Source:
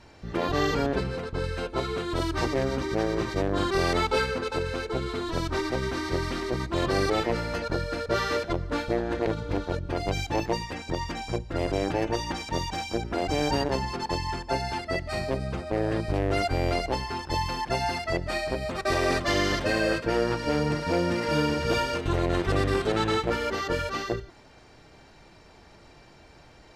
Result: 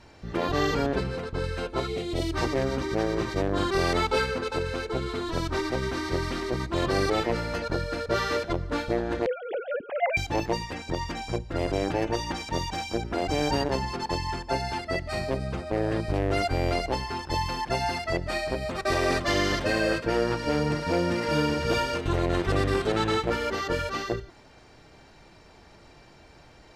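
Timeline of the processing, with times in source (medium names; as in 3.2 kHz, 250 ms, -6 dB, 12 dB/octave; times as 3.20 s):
1.88–2.33 s: time-frequency box 850–1800 Hz -13 dB
9.26–10.17 s: formants replaced by sine waves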